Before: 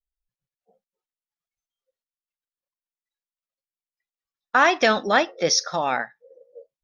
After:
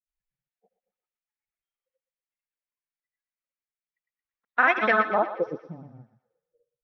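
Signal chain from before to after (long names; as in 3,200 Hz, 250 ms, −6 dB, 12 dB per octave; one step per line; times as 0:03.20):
granular cloud, pitch spread up and down by 0 semitones
low-pass filter sweep 2,200 Hz → 130 Hz, 0:04.83–0:05.94
feedback echo with a high-pass in the loop 119 ms, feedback 53%, high-pass 890 Hz, level −9.5 dB
level −5 dB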